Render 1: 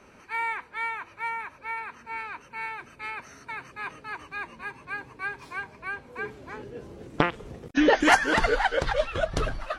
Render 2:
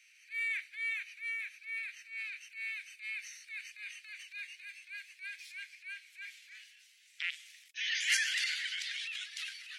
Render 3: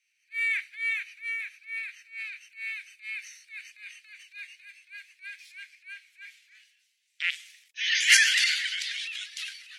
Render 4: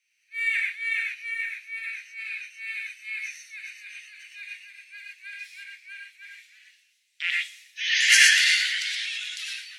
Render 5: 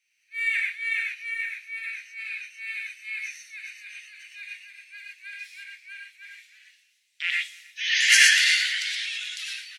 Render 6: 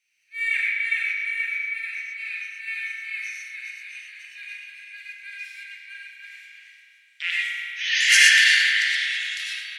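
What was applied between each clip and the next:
steep high-pass 2 kHz 48 dB/octave; transient shaper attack -8 dB, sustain +6 dB
three bands expanded up and down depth 70%; trim +5.5 dB
gated-style reverb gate 140 ms rising, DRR -1 dB
echo from a far wall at 52 m, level -25 dB
spring tank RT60 2.7 s, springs 33 ms, chirp 50 ms, DRR -0.5 dB

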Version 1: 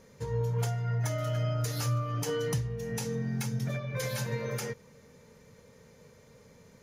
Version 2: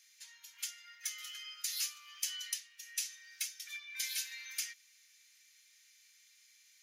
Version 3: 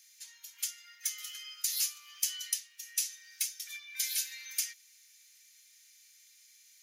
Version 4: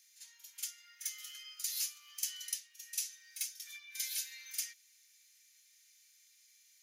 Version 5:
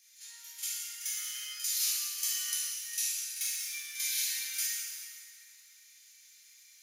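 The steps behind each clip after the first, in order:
inverse Chebyshev high-pass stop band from 520 Hz, stop band 70 dB; trim +3 dB
treble shelf 5 kHz +11 dB; trim -2 dB
reverse echo 46 ms -10.5 dB; trim -5.5 dB
plate-style reverb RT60 2.7 s, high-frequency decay 0.65×, DRR -8.5 dB

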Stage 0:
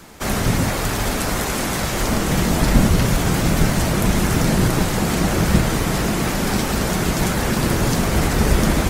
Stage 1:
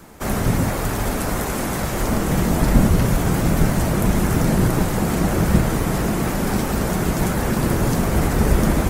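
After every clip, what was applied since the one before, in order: peaking EQ 4 kHz -7.5 dB 2.2 oct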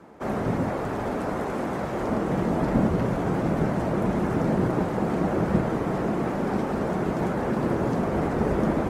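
band-pass filter 500 Hz, Q 0.56; trim -1.5 dB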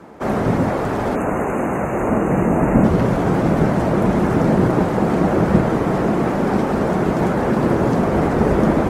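spectral selection erased 1.15–2.84 s, 2.9–6.1 kHz; trim +8 dB

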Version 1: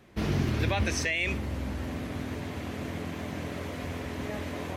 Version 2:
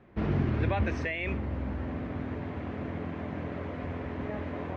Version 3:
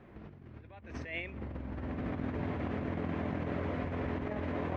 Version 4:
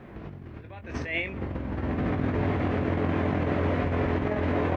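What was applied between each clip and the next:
low-pass 1.8 kHz 12 dB/octave
compressor with a negative ratio -36 dBFS, ratio -0.5; trim -1.5 dB
doubling 21 ms -8 dB; trim +9 dB

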